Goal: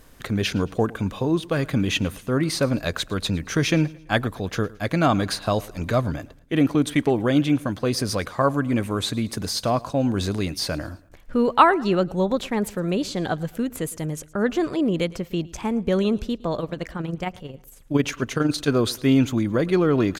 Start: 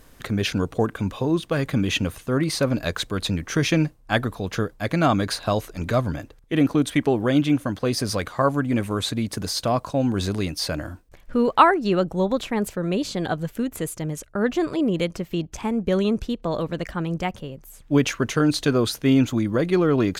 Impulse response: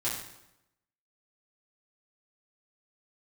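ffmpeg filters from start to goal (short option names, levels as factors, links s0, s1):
-filter_complex "[0:a]asplit=3[s0][s1][s2];[s0]afade=t=out:st=16.53:d=0.02[s3];[s1]tremolo=f=22:d=0.571,afade=t=in:st=16.53:d=0.02,afade=t=out:st=18.67:d=0.02[s4];[s2]afade=t=in:st=18.67:d=0.02[s5];[s3][s4][s5]amix=inputs=3:normalize=0,aecho=1:1:111|222|333:0.0794|0.0342|0.0147"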